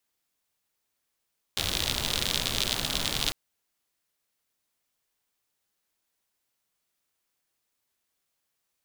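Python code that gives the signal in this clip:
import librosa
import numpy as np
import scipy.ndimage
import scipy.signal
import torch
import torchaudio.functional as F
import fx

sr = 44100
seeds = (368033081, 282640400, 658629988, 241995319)

y = fx.rain(sr, seeds[0], length_s=1.75, drops_per_s=74.0, hz=3600.0, bed_db=-2.5)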